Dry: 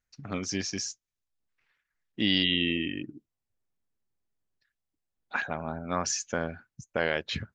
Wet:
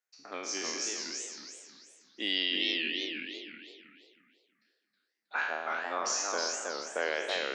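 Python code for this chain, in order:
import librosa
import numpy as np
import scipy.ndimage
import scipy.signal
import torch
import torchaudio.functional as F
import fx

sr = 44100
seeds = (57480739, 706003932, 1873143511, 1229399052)

p1 = fx.spec_trails(x, sr, decay_s=1.05)
p2 = scipy.signal.sosfilt(scipy.signal.butter(4, 350.0, 'highpass', fs=sr, output='sos'), p1)
p3 = p2 + fx.echo_single(p2, sr, ms=776, db=-24.0, dry=0)
p4 = fx.echo_warbled(p3, sr, ms=325, feedback_pct=34, rate_hz=2.8, cents=217, wet_db=-3)
y = p4 * librosa.db_to_amplitude(-5.0)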